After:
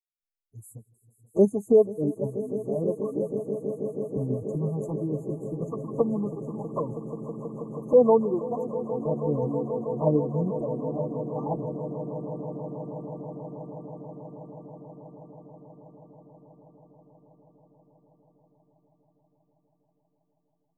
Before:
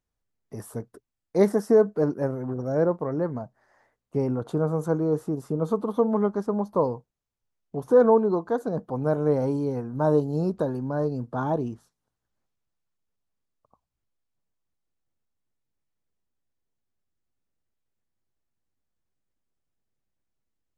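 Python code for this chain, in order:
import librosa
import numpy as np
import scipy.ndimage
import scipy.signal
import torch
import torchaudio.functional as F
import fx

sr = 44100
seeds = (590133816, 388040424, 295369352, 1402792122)

p1 = fx.bin_expand(x, sr, power=2.0)
p2 = fx.level_steps(p1, sr, step_db=11)
p3 = p1 + F.gain(torch.from_numpy(p2), -2.5).numpy()
p4 = fx.env_flanger(p3, sr, rest_ms=10.6, full_db=-19.5)
p5 = fx.brickwall_bandstop(p4, sr, low_hz=1200.0, high_hz=6200.0)
y = p5 + fx.echo_swell(p5, sr, ms=161, loudest=8, wet_db=-16, dry=0)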